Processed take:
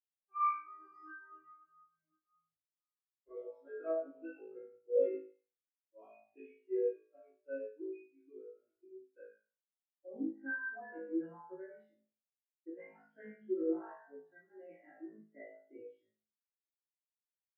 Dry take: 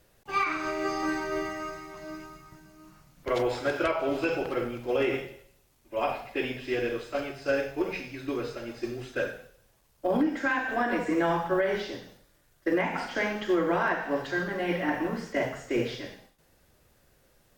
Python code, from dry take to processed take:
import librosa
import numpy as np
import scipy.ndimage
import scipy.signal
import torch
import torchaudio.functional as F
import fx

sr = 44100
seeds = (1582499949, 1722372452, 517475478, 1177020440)

y = fx.vibrato(x, sr, rate_hz=3.8, depth_cents=11.0)
y = fx.comb_fb(y, sr, f0_hz=54.0, decay_s=0.91, harmonics='all', damping=0.0, mix_pct=100)
y = fx.spectral_expand(y, sr, expansion=2.5)
y = y * 10.0 ** (5.0 / 20.0)